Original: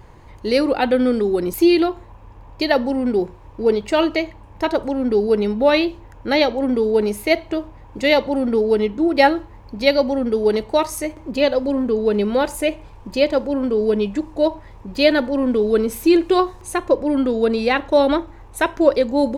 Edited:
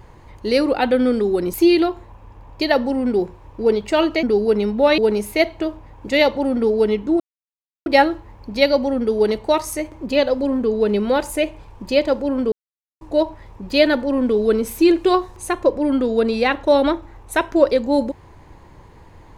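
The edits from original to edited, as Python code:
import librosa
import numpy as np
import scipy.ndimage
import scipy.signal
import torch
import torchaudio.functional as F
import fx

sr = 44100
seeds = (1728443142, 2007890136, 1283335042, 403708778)

y = fx.edit(x, sr, fx.cut(start_s=4.23, length_s=0.82),
    fx.cut(start_s=5.8, length_s=1.09),
    fx.insert_silence(at_s=9.11, length_s=0.66),
    fx.silence(start_s=13.77, length_s=0.49), tone=tone)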